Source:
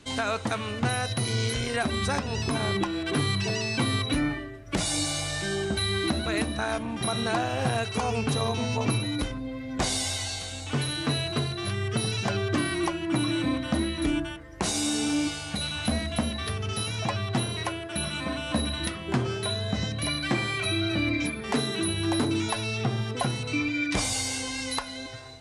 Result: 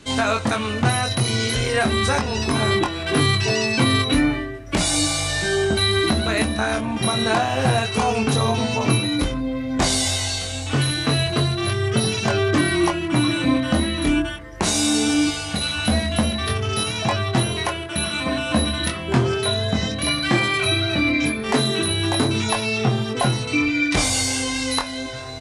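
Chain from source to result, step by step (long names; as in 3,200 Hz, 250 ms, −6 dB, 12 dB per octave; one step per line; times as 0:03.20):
reversed playback
upward compression, threshold −36 dBFS
reversed playback
double-tracking delay 23 ms −4 dB
level +6 dB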